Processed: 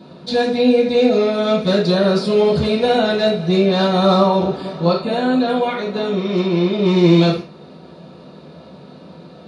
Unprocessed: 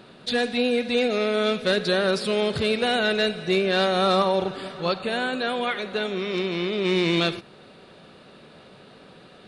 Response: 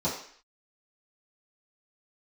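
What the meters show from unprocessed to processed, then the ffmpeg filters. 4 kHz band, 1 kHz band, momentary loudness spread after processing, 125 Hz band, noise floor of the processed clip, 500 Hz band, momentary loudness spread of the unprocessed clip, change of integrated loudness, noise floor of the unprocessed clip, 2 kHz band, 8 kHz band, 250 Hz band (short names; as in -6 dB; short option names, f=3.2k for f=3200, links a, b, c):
+2.0 dB, +6.5 dB, 7 LU, +13.0 dB, -41 dBFS, +7.5 dB, 6 LU, +7.0 dB, -49 dBFS, -1.0 dB, n/a, +10.5 dB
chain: -filter_complex "[1:a]atrim=start_sample=2205,atrim=end_sample=3969[a];[0:a][a]afir=irnorm=-1:irlink=0,volume=-4.5dB"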